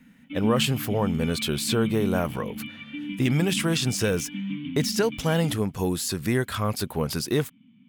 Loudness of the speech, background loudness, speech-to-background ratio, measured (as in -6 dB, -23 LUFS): -26.0 LUFS, -34.0 LUFS, 8.0 dB